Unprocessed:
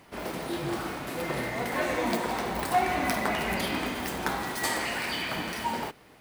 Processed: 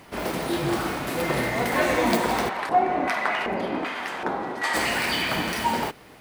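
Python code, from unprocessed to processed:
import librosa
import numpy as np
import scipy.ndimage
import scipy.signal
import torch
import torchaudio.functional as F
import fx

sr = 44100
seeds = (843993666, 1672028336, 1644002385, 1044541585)

y = fx.filter_lfo_bandpass(x, sr, shape='square', hz=1.3, low_hz=480.0, high_hz=1500.0, q=0.8, at=(2.48, 4.73), fade=0.02)
y = y * 10.0 ** (6.5 / 20.0)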